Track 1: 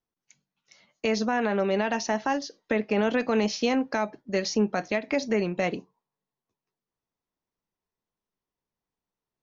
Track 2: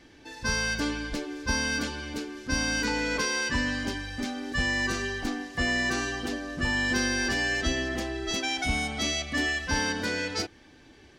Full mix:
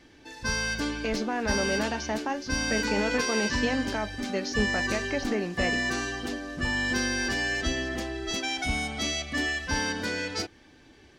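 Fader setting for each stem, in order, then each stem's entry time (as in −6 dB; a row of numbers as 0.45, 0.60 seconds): −4.5, −1.0 decibels; 0.00, 0.00 seconds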